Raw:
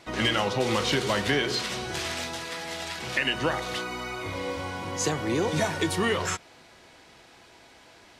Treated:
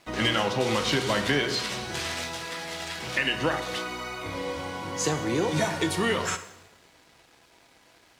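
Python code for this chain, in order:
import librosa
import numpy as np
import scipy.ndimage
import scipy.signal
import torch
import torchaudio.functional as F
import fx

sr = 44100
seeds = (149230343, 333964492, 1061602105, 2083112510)

y = fx.rev_double_slope(x, sr, seeds[0], early_s=0.86, late_s=2.3, knee_db=-18, drr_db=8.5)
y = np.sign(y) * np.maximum(np.abs(y) - 10.0 ** (-55.5 / 20.0), 0.0)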